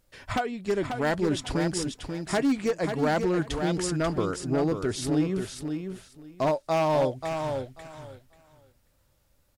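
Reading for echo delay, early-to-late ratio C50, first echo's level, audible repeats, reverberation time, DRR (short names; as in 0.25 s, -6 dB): 0.538 s, none, -6.5 dB, 2, none, none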